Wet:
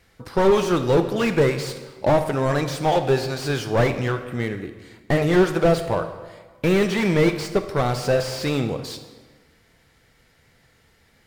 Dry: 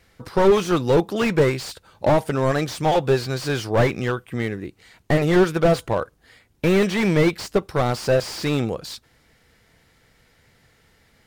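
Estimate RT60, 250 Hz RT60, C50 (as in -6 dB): 1.4 s, 1.4 s, 9.5 dB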